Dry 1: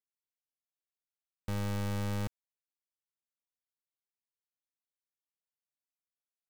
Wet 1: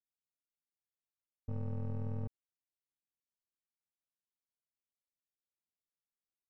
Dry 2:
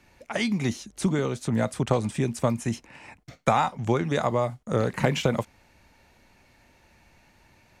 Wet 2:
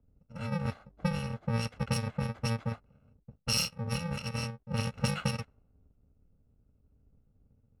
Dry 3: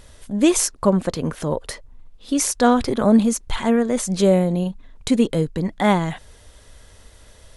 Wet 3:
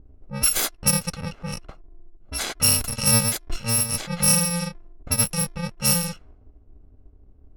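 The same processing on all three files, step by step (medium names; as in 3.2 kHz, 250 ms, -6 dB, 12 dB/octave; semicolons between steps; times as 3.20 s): bit-reversed sample order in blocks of 128 samples; level-controlled noise filter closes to 360 Hz, open at -14.5 dBFS; trim -1.5 dB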